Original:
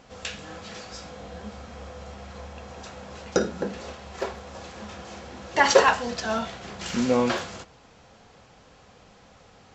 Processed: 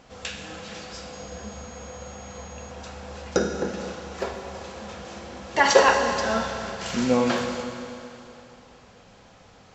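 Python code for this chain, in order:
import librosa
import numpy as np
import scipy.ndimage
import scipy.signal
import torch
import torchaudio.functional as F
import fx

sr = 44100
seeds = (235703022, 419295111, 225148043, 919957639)

y = fx.rev_schroeder(x, sr, rt60_s=2.9, comb_ms=32, drr_db=4.5)
y = fx.dmg_tone(y, sr, hz=6600.0, level_db=-47.0, at=(1.12, 2.69), fade=0.02)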